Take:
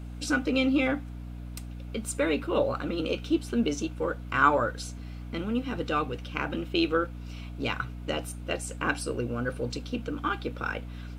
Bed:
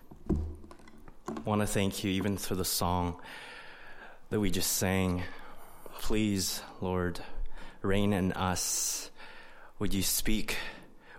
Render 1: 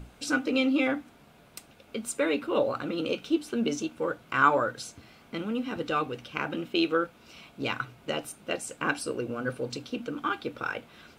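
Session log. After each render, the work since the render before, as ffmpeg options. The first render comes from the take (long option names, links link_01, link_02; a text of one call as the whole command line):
ffmpeg -i in.wav -af "bandreject=frequency=60:width_type=h:width=6,bandreject=frequency=120:width_type=h:width=6,bandreject=frequency=180:width_type=h:width=6,bandreject=frequency=240:width_type=h:width=6,bandreject=frequency=300:width_type=h:width=6" out.wav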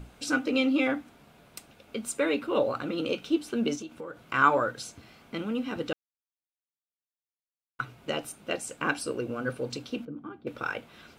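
ffmpeg -i in.wav -filter_complex "[0:a]asettb=1/sr,asplit=3[link_01][link_02][link_03];[link_01]atrim=end=3.754[link_04];[link_02]atrim=start=3.75:end=4.21,asetpts=PTS-STARTPTS,afade=type=in:duration=0.004:curve=qsin,afade=type=out:start_time=0.456:duration=0.004:curve=qsin,acompressor=threshold=-36dB:ratio=6:attack=3.2:release=140:knee=1:detection=peak[link_05];[link_03]atrim=start=4.206[link_06];[link_04][link_05]acrossfade=duration=0.004:curve1=hsin:curve2=qsin[link_07];[link_07][link_06]acrossfade=duration=0.004:curve1=qsin:curve2=hsin,asettb=1/sr,asplit=3[link_08][link_09][link_10];[link_08]atrim=end=10.054[link_11];[link_09]atrim=start=10.05:end=10.47,asetpts=PTS-STARTPTS,afade=type=in:duration=0.004:curve=qsin,afade=type=out:start_time=0.416:duration=0.004:curve=qsin,bandpass=frequency=160:width_type=q:width=0.99[link_12];[link_10]atrim=start=10.466[link_13];[link_11][link_12]acrossfade=duration=0.004:curve1=hsin:curve2=qsin[link_14];[link_14][link_13]acrossfade=duration=0.004:curve1=qsin:curve2=hsin,asplit=3[link_15][link_16][link_17];[link_15]atrim=end=5.93,asetpts=PTS-STARTPTS,afade=type=out:start_time=5.926:duration=0.004:curve=hsin[link_18];[link_16]atrim=start=5.93:end=7.79,asetpts=PTS-STARTPTS,volume=0[link_19];[link_17]atrim=start=7.79,asetpts=PTS-STARTPTS,afade=type=in:duration=0.004:curve=hsin[link_20];[link_18][link_19][link_20]concat=n=3:v=0:a=1" out.wav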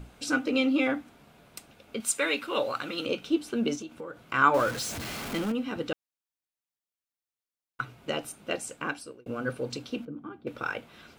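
ffmpeg -i in.wav -filter_complex "[0:a]asettb=1/sr,asplit=3[link_01][link_02][link_03];[link_01]atrim=end=2.004[link_04];[link_02]atrim=start=2:end=3.06,asetpts=PTS-STARTPTS,afade=type=in:duration=0.004:curve=qsin,afade=type=out:start_time=1.056:duration=0.004:curve=qsin,tiltshelf=frequency=920:gain=-7.5[link_05];[link_03]atrim=start=3.056[link_06];[link_04][link_05]acrossfade=duration=0.004:curve1=hsin:curve2=qsin[link_07];[link_07][link_06]acrossfade=duration=0.004:curve1=qsin:curve2=hsin,asettb=1/sr,asplit=3[link_08][link_09][link_10];[link_08]atrim=end=4.544[link_11];[link_09]atrim=start=4.54:end=5.52,asetpts=PTS-STARTPTS,afade=type=in:duration=0.004:curve=qsin,afade=type=out:start_time=0.976:duration=0.004:curve=qsin,aeval=exprs='val(0)+0.5*0.0266*sgn(val(0))':channel_layout=same[link_12];[link_10]atrim=start=5.516[link_13];[link_11][link_12]acrossfade=duration=0.004:curve1=hsin:curve2=qsin[link_14];[link_14][link_13]acrossfade=duration=0.004:curve1=qsin:curve2=hsin,asplit=2[link_15][link_16];[link_15]atrim=end=9.26,asetpts=PTS-STARTPTS,afade=type=out:start_time=8.63:duration=0.63[link_17];[link_16]atrim=start=9.26,asetpts=PTS-STARTPTS,afade=type=in:duration=0.004:curve=hsin[link_18];[link_17][link_18]concat=n=2:v=0:a=1" out.wav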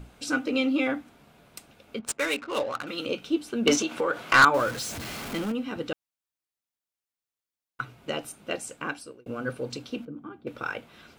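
ffmpeg -i in.wav -filter_complex "[0:a]asettb=1/sr,asplit=3[link_01][link_02][link_03];[link_01]atrim=end=1.994[link_04];[link_02]atrim=start=1.99:end=2.87,asetpts=PTS-STARTPTS,afade=type=in:duration=0.004:curve=qsin,afade=type=out:start_time=0.876:duration=0.004:curve=qsin,adynamicsmooth=sensitivity=7.5:basefreq=650[link_05];[link_03]atrim=start=2.866[link_06];[link_04][link_05]acrossfade=duration=0.004:curve1=hsin:curve2=qsin[link_07];[link_07][link_06]acrossfade=duration=0.004:curve1=qsin:curve2=hsin,asettb=1/sr,asplit=3[link_08][link_09][link_10];[link_08]atrim=end=3.674[link_11];[link_09]atrim=start=3.67:end=4.45,asetpts=PTS-STARTPTS,afade=type=in:duration=0.004:curve=qsin,afade=type=out:start_time=0.776:duration=0.004:curve=qsin,asplit=2[link_12][link_13];[link_13]highpass=frequency=720:poles=1,volume=24dB,asoftclip=type=tanh:threshold=-7.5dB[link_14];[link_12][link_14]amix=inputs=2:normalize=0,lowpass=frequency=5600:poles=1,volume=-6dB[link_15];[link_10]atrim=start=4.446[link_16];[link_11][link_15]acrossfade=duration=0.004:curve1=hsin:curve2=qsin[link_17];[link_17][link_16]acrossfade=duration=0.004:curve1=qsin:curve2=hsin" out.wav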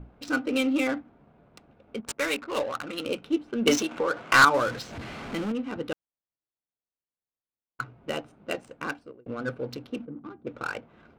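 ffmpeg -i in.wav -af "adynamicsmooth=sensitivity=7.5:basefreq=1100" out.wav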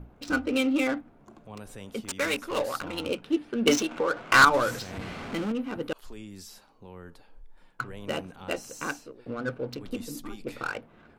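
ffmpeg -i in.wav -i bed.wav -filter_complex "[1:a]volume=-14dB[link_01];[0:a][link_01]amix=inputs=2:normalize=0" out.wav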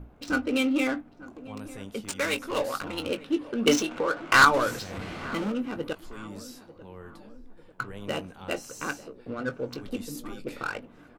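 ffmpeg -i in.wav -filter_complex "[0:a]asplit=2[link_01][link_02];[link_02]adelay=20,volume=-11dB[link_03];[link_01][link_03]amix=inputs=2:normalize=0,asplit=2[link_04][link_05];[link_05]adelay=895,lowpass=frequency=1100:poles=1,volume=-17dB,asplit=2[link_06][link_07];[link_07]adelay=895,lowpass=frequency=1100:poles=1,volume=0.54,asplit=2[link_08][link_09];[link_09]adelay=895,lowpass=frequency=1100:poles=1,volume=0.54,asplit=2[link_10][link_11];[link_11]adelay=895,lowpass=frequency=1100:poles=1,volume=0.54,asplit=2[link_12][link_13];[link_13]adelay=895,lowpass=frequency=1100:poles=1,volume=0.54[link_14];[link_04][link_06][link_08][link_10][link_12][link_14]amix=inputs=6:normalize=0" out.wav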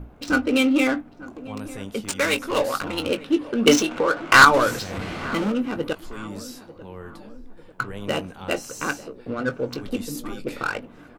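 ffmpeg -i in.wav -af "volume=6dB,alimiter=limit=-2dB:level=0:latency=1" out.wav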